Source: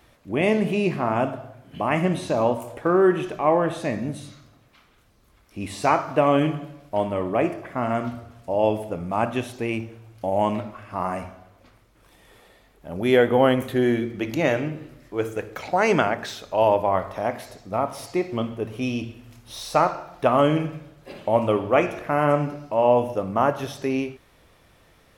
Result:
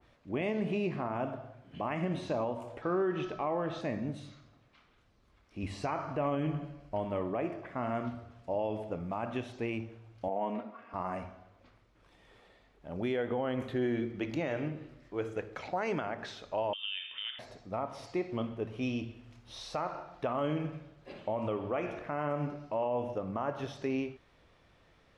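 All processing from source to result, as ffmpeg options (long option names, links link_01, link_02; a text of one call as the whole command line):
ffmpeg -i in.wav -filter_complex "[0:a]asettb=1/sr,asplit=3[link_01][link_02][link_03];[link_01]atrim=end=2.824[link_04];[link_02]atrim=start=2.82:end=3.81,asetpts=PTS-STARTPTS,afade=type=in:duration=0.004:curve=qsin,afade=type=out:start_time=0.986:duration=0.004:curve=qsin,lowpass=frequency=5400:width=0.5412,lowpass=frequency=5400:width=1.3066,bass=frequency=250:gain=1,treble=frequency=4000:gain=11,aeval=exprs='val(0)+0.00891*sin(2*PI*1300*n/s)':channel_layout=same[link_05];[link_03]atrim=start=3.806[link_06];[link_04][link_05]acrossfade=duration=0.004:curve1=hsin:curve2=qsin[link_07];[link_07][link_06]acrossfade=duration=0.004:curve1=qsin:curve2=hsin,asettb=1/sr,asplit=3[link_08][link_09][link_10];[link_08]atrim=end=5.634[link_11];[link_09]atrim=start=5.63:end=7.05,asetpts=PTS-STARTPTS,afade=type=in:duration=0.004:curve=qsin,afade=type=out:start_time=1.416:duration=0.004:curve=qsin,lowshelf=frequency=100:gain=11.5,bandreject=frequency=3600:width=8.3[link_12];[link_10]atrim=start=7.046[link_13];[link_11][link_12]acrossfade=duration=0.004:curve1=hsin:curve2=qsin[link_14];[link_14][link_13]acrossfade=duration=0.004:curve1=qsin:curve2=hsin,asettb=1/sr,asplit=3[link_15][link_16][link_17];[link_15]atrim=end=10.284[link_18];[link_16]atrim=start=10.28:end=10.94,asetpts=PTS-STARTPTS,afade=type=in:duration=0.004:curve=qsin,afade=type=out:start_time=0.656:duration=0.004:curve=qsin,highpass=270,highshelf=frequency=2600:gain=-12,aecho=1:1:4.3:0.66,atrim=end_sample=29106[link_19];[link_17]atrim=start=10.936[link_20];[link_18][link_19]acrossfade=duration=0.004:curve1=hsin:curve2=qsin[link_21];[link_21][link_20]acrossfade=duration=0.004:curve1=qsin:curve2=hsin,asettb=1/sr,asplit=3[link_22][link_23][link_24];[link_22]atrim=end=16.734[link_25];[link_23]atrim=start=16.73:end=17.39,asetpts=PTS-STARTPTS,afade=type=in:duration=0.004:curve=qsin,afade=type=out:start_time=0.656:duration=0.004:curve=qsin,lowpass=frequency=3100:width_type=q:width=0.5098,lowpass=frequency=3100:width_type=q:width=0.6013,lowpass=frequency=3100:width_type=q:width=0.9,lowpass=frequency=3100:width_type=q:width=2.563,afreqshift=-3700,acompressor=threshold=-24dB:ratio=4:attack=3.2:release=140:knee=1:detection=peak[link_26];[link_24]atrim=start=17.386[link_27];[link_25][link_26]acrossfade=duration=0.004:curve1=hsin:curve2=qsin[link_28];[link_28][link_27]acrossfade=duration=0.004:curve1=qsin:curve2=hsin,lowpass=5200,alimiter=limit=-16dB:level=0:latency=1:release=104,adynamicequalizer=threshold=0.0126:dfrequency=1700:dqfactor=0.7:tfrequency=1700:tqfactor=0.7:attack=5:release=100:ratio=0.375:range=1.5:mode=cutabove:tftype=highshelf,volume=-7.5dB" out.wav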